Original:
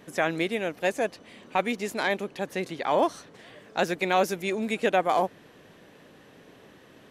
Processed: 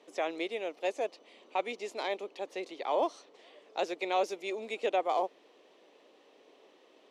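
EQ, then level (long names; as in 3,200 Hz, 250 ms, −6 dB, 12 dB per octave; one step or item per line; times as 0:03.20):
high-pass filter 340 Hz 24 dB per octave
low-pass filter 5,800 Hz 12 dB per octave
parametric band 1,600 Hz −12.5 dB 0.53 octaves
−5.0 dB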